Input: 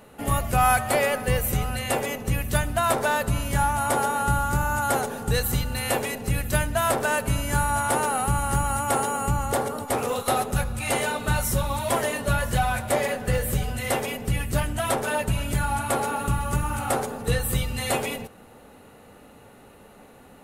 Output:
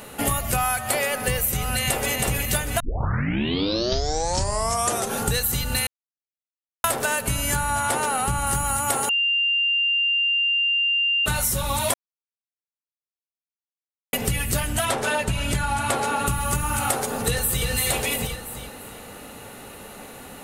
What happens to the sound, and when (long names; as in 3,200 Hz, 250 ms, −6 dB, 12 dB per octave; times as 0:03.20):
0:01.55–0:02.13: delay throw 320 ms, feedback 60%, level −5.5 dB
0:02.80: tape start 2.44 s
0:05.87–0:06.84: silence
0:07.55–0:08.47: high-shelf EQ 10,000 Hz −11 dB
0:09.09–0:11.26: beep over 2,790 Hz −23.5 dBFS
0:11.94–0:14.13: silence
0:14.85–0:16.27: high-frequency loss of the air 51 metres
0:17.00–0:17.67: delay throw 340 ms, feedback 35%, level −4.5 dB
whole clip: high-shelf EQ 2,000 Hz +9.5 dB; downward compressor 10 to 1, threshold −27 dBFS; level +7 dB